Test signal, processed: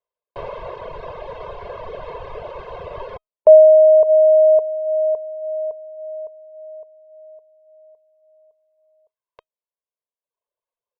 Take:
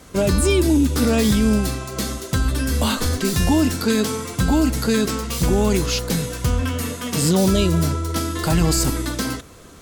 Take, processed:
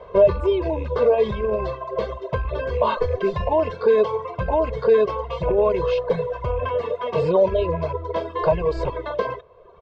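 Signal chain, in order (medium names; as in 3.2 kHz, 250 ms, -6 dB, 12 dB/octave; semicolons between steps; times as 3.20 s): rattle on loud lows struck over -17 dBFS, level -24 dBFS; low-pass 3.2 kHz 24 dB/octave; comb 1.9 ms, depth 76%; peak limiter -11.5 dBFS; feedback comb 630 Hz, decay 0.19 s, harmonics all, mix 30%; reverb removal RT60 1.3 s; high-order bell 660 Hz +14.5 dB; trim -3.5 dB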